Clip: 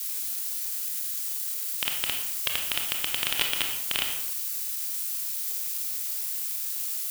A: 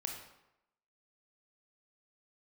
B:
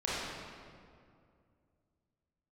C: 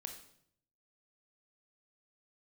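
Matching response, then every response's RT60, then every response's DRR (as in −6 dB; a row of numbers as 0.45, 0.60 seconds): A; 0.85, 2.3, 0.65 seconds; 1.5, −9.0, 4.0 decibels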